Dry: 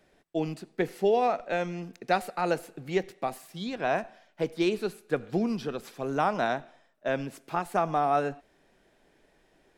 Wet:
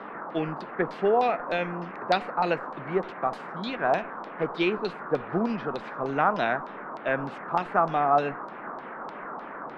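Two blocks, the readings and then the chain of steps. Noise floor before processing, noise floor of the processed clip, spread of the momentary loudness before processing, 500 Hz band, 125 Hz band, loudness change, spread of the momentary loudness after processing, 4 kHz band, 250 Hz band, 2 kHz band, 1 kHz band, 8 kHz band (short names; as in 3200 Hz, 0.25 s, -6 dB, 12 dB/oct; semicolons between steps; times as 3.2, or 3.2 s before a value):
-66 dBFS, -41 dBFS, 10 LU, +1.5 dB, +0.5 dB, +2.0 dB, 14 LU, +2.0 dB, +0.5 dB, +4.0 dB, +3.5 dB, under -10 dB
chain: band noise 170–1400 Hz -41 dBFS; LFO low-pass saw down 3.3 Hz 900–4400 Hz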